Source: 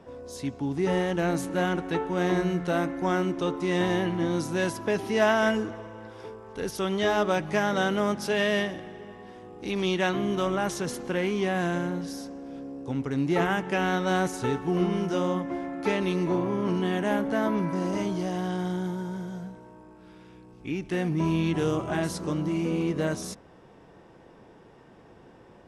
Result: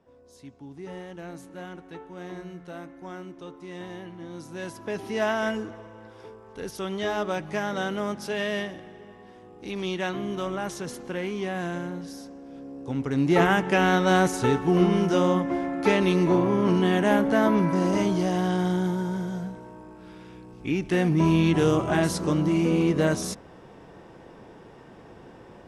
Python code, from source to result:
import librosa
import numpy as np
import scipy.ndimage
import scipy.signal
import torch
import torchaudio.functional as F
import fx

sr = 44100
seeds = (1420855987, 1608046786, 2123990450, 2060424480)

y = fx.gain(x, sr, db=fx.line((4.23, -13.5), (5.05, -3.5), (12.49, -3.5), (13.39, 5.0)))